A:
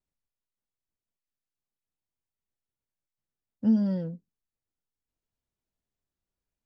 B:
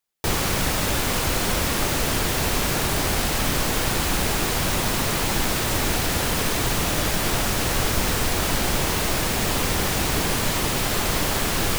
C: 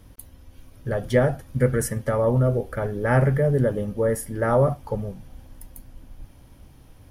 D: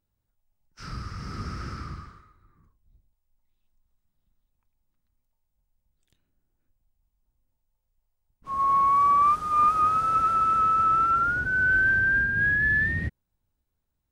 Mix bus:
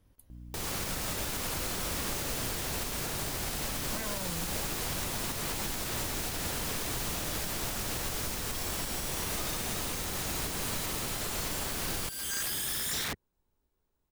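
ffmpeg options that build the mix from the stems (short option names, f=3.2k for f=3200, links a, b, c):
-filter_complex "[0:a]aeval=exprs='0.178*sin(PI/2*6.31*val(0)/0.178)':c=same,adelay=300,volume=-8dB[a];[1:a]aeval=exprs='val(0)+0.00562*(sin(2*PI*60*n/s)+sin(2*PI*2*60*n/s)/2+sin(2*PI*3*60*n/s)/3+sin(2*PI*4*60*n/s)/4+sin(2*PI*5*60*n/s)/5)':c=same,adelay=300,volume=0.5dB[b];[2:a]volume=-16.5dB[c];[3:a]equalizer=f=100:t=o:w=0.67:g=-7,equalizer=f=400:t=o:w=0.67:g=9,equalizer=f=1k:t=o:w=0.67:g=4,acompressor=threshold=-20dB:ratio=3,aeval=exprs='(mod(23.7*val(0)+1,2)-1)/23.7':c=same,adelay=50,volume=0.5dB[d];[a][b][c][d]amix=inputs=4:normalize=0,acrossover=split=3900|8000[e][f][g];[e]acompressor=threshold=-30dB:ratio=4[h];[f]acompressor=threshold=-37dB:ratio=4[i];[g]acompressor=threshold=-32dB:ratio=4[j];[h][i][j]amix=inputs=3:normalize=0,alimiter=limit=-23.5dB:level=0:latency=1:release=361"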